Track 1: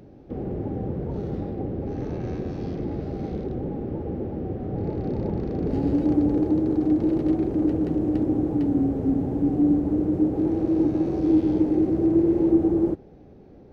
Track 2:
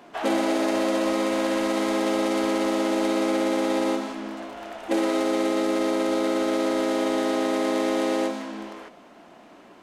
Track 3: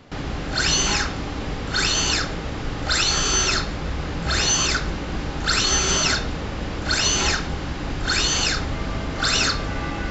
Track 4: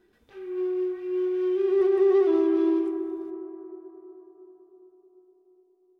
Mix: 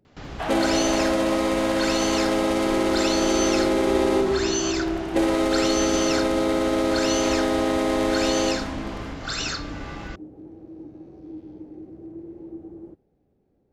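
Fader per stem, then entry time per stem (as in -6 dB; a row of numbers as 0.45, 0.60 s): -19.5, +1.5, -8.5, -4.0 dB; 0.00, 0.25, 0.05, 2.15 s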